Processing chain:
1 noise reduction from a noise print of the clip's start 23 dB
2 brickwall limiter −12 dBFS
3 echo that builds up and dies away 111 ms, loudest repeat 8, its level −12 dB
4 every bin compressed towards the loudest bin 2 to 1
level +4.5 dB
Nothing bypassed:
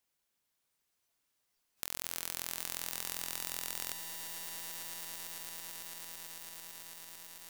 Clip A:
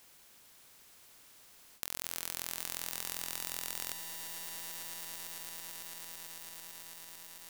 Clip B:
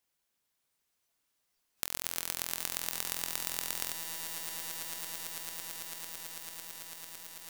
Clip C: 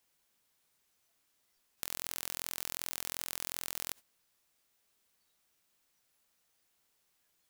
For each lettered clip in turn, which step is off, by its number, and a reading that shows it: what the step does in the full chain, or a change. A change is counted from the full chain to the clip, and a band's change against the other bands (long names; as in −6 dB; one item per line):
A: 1, change in momentary loudness spread +10 LU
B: 2, average gain reduction 1.5 dB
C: 3, change in momentary loudness spread −5 LU